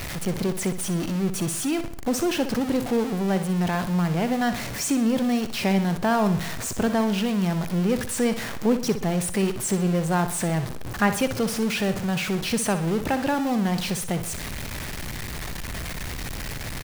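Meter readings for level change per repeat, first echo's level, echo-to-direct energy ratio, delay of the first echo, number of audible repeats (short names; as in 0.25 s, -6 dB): -7.0 dB, -11.0 dB, -10.0 dB, 62 ms, 4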